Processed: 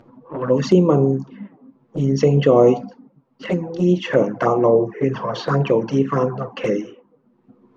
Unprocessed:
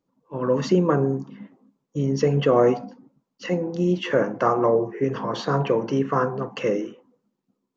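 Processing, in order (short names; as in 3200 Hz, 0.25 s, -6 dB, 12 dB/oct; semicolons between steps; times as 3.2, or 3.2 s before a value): low-pass opened by the level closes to 1600 Hz, open at -19 dBFS; upward compressor, threshold -33 dBFS; envelope flanger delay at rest 9.1 ms, full sweep at -16.5 dBFS; gain +6 dB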